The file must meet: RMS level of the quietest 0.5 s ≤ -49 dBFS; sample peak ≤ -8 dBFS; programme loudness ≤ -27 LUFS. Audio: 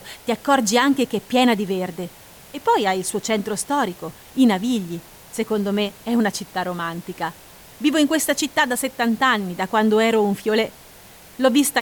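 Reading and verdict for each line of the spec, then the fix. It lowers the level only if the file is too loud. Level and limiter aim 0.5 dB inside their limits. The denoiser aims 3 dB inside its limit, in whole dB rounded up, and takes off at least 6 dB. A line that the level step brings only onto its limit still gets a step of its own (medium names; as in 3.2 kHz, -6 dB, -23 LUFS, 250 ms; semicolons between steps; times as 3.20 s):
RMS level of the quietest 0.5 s -45 dBFS: fail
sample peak -5.5 dBFS: fail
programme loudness -20.5 LUFS: fail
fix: trim -7 dB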